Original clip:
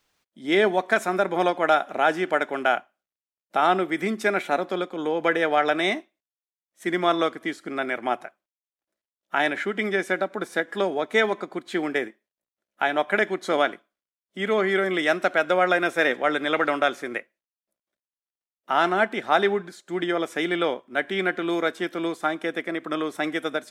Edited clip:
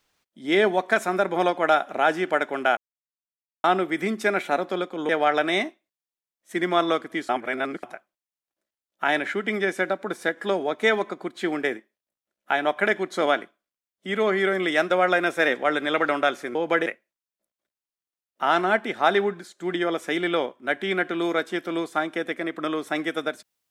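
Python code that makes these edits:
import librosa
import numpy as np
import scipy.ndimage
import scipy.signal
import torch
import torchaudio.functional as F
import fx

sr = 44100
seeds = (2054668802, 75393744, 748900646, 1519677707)

y = fx.edit(x, sr, fx.silence(start_s=2.77, length_s=0.87),
    fx.move(start_s=5.09, length_s=0.31, to_s=17.14),
    fx.reverse_span(start_s=7.6, length_s=0.54),
    fx.cut(start_s=15.21, length_s=0.28), tone=tone)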